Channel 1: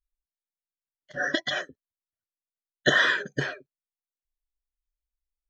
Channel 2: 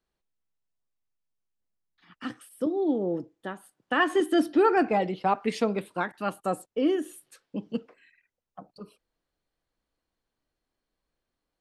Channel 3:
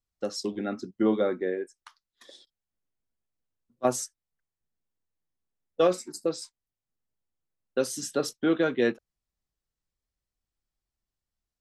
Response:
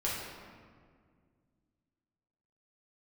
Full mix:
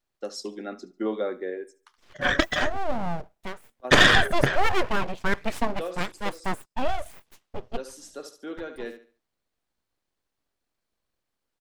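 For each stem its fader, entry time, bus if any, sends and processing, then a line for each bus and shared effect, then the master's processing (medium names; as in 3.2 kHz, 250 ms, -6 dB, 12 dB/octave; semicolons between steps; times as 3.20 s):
-0.5 dB, 1.05 s, no send, no echo send, peaking EQ 4.3 kHz -14.5 dB 0.59 oct; Chebyshev shaper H 5 -17 dB, 8 -9 dB, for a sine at -4.5 dBFS
+2.0 dB, 0.00 s, no send, no echo send, full-wave rectifier
-2.0 dB, 0.00 s, no send, echo send -18.5 dB, high-pass 290 Hz 12 dB/octave; auto duck -9 dB, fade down 0.30 s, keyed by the second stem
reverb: none
echo: feedback delay 72 ms, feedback 29%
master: none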